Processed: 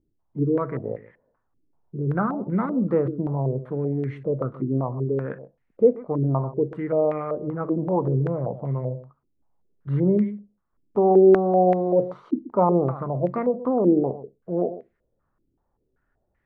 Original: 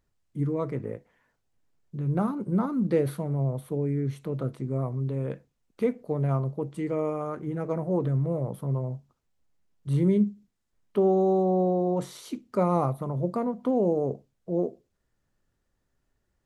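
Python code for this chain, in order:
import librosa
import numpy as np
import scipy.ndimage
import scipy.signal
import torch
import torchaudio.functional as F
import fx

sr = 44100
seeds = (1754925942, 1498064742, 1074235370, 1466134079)

y = x + 10.0 ** (-15.0 / 20.0) * np.pad(x, (int(131 * sr / 1000.0), 0))[:len(x)]
y = fx.filter_held_lowpass(y, sr, hz=5.2, low_hz=320.0, high_hz=2000.0)
y = F.gain(torch.from_numpy(y), 1.0).numpy()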